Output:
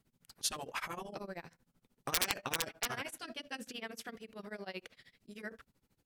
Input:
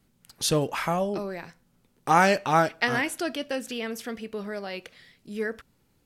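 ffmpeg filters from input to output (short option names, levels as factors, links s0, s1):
-af "tremolo=f=13:d=0.95,aeval=exprs='(mod(4.22*val(0)+1,2)-1)/4.22':c=same,afftfilt=real='re*lt(hypot(re,im),0.141)':imag='im*lt(hypot(re,im),0.141)':win_size=1024:overlap=0.75,volume=0.596"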